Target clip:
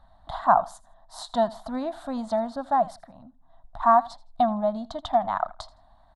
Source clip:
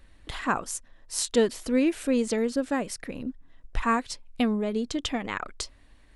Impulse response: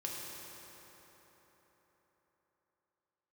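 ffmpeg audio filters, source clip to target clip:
-filter_complex "[0:a]lowshelf=f=210:g=-6,asplit=3[a][b][c];[a]afade=t=out:st=3:d=0.02[d];[b]acompressor=threshold=-43dB:ratio=10,afade=t=in:st=3:d=0.02,afade=t=out:st=3.79:d=0.02[e];[c]afade=t=in:st=3.79:d=0.02[f];[d][e][f]amix=inputs=3:normalize=0,firequalizer=gain_entry='entry(190,0);entry(440,-28);entry(660,14);entry(2500,-27);entry(3700,-4);entry(5600,-19)':delay=0.05:min_phase=1,aecho=1:1:81|162:0.0891|0.0214,volume=3dB"

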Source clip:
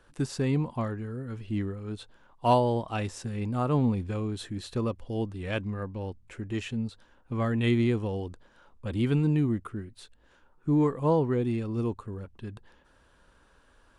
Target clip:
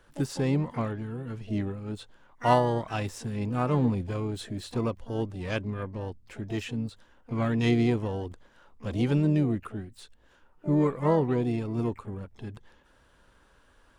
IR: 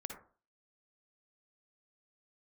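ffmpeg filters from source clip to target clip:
-filter_complex "[0:a]asplit=3[a][b][c];[b]asetrate=55563,aresample=44100,atempo=0.793701,volume=-16dB[d];[c]asetrate=88200,aresample=44100,atempo=0.5,volume=-14dB[e];[a][d][e]amix=inputs=3:normalize=0"

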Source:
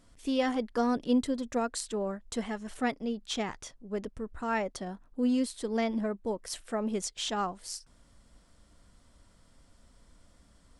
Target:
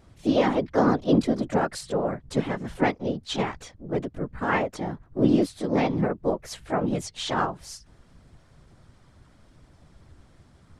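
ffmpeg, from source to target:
-filter_complex "[0:a]afftfilt=real='hypot(re,im)*cos(2*PI*random(0))':imag='hypot(re,im)*sin(2*PI*random(1))':win_size=512:overlap=0.75,acontrast=57,asplit=2[a][b];[b]asetrate=52444,aresample=44100,atempo=0.840896,volume=-3dB[c];[a][c]amix=inputs=2:normalize=0,aemphasis=mode=reproduction:type=50fm,volume=4.5dB"

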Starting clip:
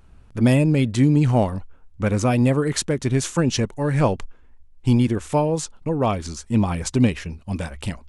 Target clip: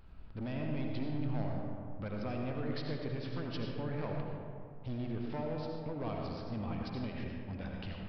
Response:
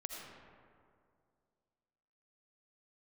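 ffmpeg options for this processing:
-filter_complex "[0:a]acompressor=threshold=-43dB:ratio=2,aresample=11025,volume=30.5dB,asoftclip=hard,volume=-30.5dB,aresample=44100[a];[1:a]atrim=start_sample=2205[b];[a][b]afir=irnorm=-1:irlink=0,volume=-1dB"

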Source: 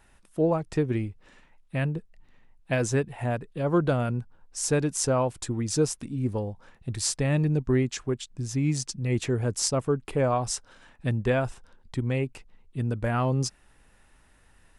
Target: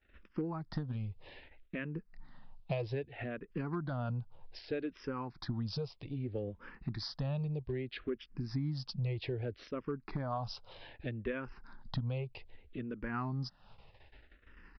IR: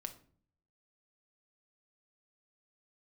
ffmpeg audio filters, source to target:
-filter_complex "[0:a]agate=range=-27dB:threshold=-57dB:ratio=16:detection=peak,acompressor=threshold=-37dB:ratio=10,aresample=16000,volume=31.5dB,asoftclip=hard,volume=-31.5dB,aresample=44100,aresample=11025,aresample=44100,asplit=2[a][b];[b]afreqshift=-0.63[c];[a][c]amix=inputs=2:normalize=1,volume=6dB"

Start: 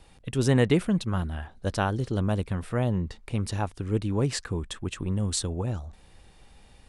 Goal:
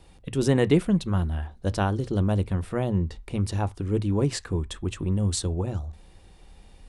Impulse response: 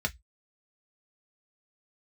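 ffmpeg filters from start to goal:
-filter_complex "[0:a]asplit=2[a][b];[1:a]atrim=start_sample=2205,asetrate=24696,aresample=44100,lowshelf=f=480:g=9.5[c];[b][c]afir=irnorm=-1:irlink=0,volume=-24dB[d];[a][d]amix=inputs=2:normalize=0"

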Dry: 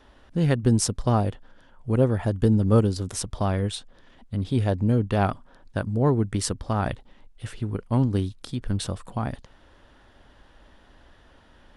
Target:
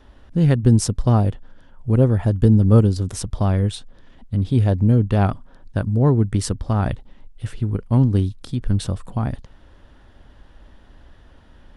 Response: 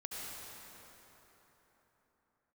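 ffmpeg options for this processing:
-af "lowshelf=f=250:g=9"

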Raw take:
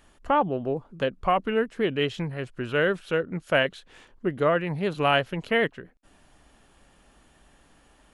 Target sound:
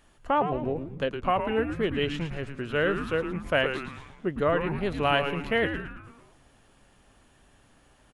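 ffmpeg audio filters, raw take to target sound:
-filter_complex "[0:a]asplit=7[a][b][c][d][e][f][g];[b]adelay=111,afreqshift=-140,volume=-7.5dB[h];[c]adelay=222,afreqshift=-280,volume=-13.2dB[i];[d]adelay=333,afreqshift=-420,volume=-18.9dB[j];[e]adelay=444,afreqshift=-560,volume=-24.5dB[k];[f]adelay=555,afreqshift=-700,volume=-30.2dB[l];[g]adelay=666,afreqshift=-840,volume=-35.9dB[m];[a][h][i][j][k][l][m]amix=inputs=7:normalize=0,volume=-2.5dB"

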